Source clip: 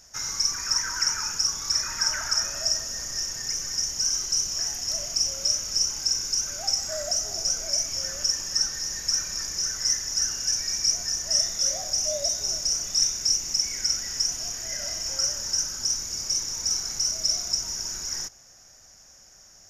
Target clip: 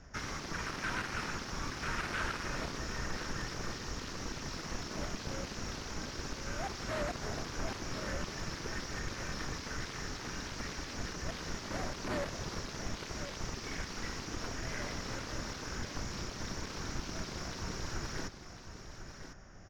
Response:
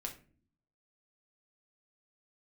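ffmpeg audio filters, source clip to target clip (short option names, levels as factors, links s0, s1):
-filter_complex "[0:a]asplit=2[s0][s1];[s1]alimiter=limit=0.0841:level=0:latency=1,volume=0.841[s2];[s0][s2]amix=inputs=2:normalize=0,aeval=exprs='0.0501*(abs(mod(val(0)/0.0501+3,4)-2)-1)':c=same,highshelf=f=2200:g=-8.5,adynamicsmooth=sensitivity=4:basefreq=2100,aecho=1:1:1052:0.316,acrossover=split=520|900[s3][s4][s5];[s4]acrusher=bits=4:mix=0:aa=0.000001[s6];[s3][s6][s5]amix=inputs=3:normalize=0,volume=1.78"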